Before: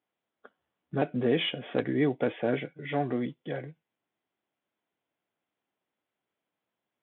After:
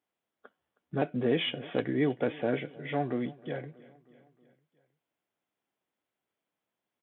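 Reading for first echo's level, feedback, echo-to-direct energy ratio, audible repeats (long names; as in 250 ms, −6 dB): −21.5 dB, 58%, −20.0 dB, 3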